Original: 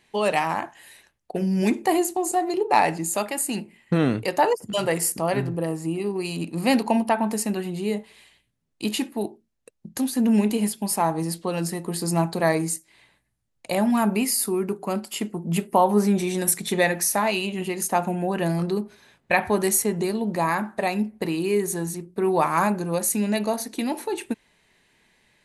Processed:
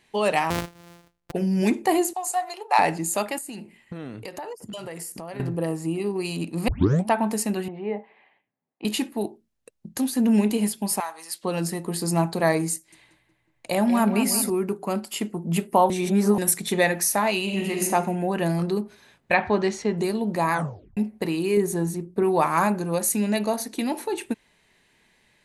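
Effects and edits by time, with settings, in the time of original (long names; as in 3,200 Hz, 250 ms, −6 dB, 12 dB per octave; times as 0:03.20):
0:00.50–0:01.32: samples sorted by size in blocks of 256 samples
0:02.13–0:02.79: high-pass filter 660 Hz 24 dB per octave
0:03.38–0:05.40: downward compressor, threshold −33 dBFS
0:06.68: tape start 0.40 s
0:07.68–0:08.85: loudspeaker in its box 280–2,100 Hz, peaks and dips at 350 Hz −3 dB, 790 Hz +8 dB, 1,400 Hz −6 dB
0:11.00–0:11.43: high-pass filter 1,400 Hz
0:12.74–0:14.50: feedback echo with a low-pass in the loop 183 ms, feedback 67%, low-pass 2,700 Hz, level −9.5 dB
0:15.90–0:16.38: reverse
0:17.42–0:17.84: thrown reverb, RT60 1.2 s, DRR 0.5 dB
0:19.34–0:19.98: low-pass filter 5,000 Hz 24 dB per octave
0:20.53: tape stop 0.44 s
0:21.57–0:22.23: tilt shelving filter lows +4 dB, about 1,100 Hz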